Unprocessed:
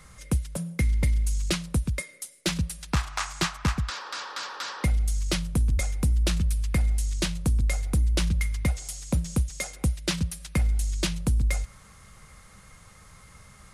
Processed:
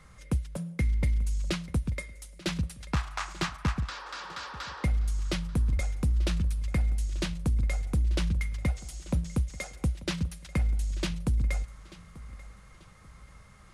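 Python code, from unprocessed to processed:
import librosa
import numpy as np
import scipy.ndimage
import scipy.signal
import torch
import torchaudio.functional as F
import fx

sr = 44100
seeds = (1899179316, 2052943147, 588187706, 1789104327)

y = fx.high_shelf(x, sr, hz=5600.0, db=-10.5)
y = fx.echo_feedback(y, sr, ms=888, feedback_pct=35, wet_db=-19.0)
y = F.gain(torch.from_numpy(y), -3.0).numpy()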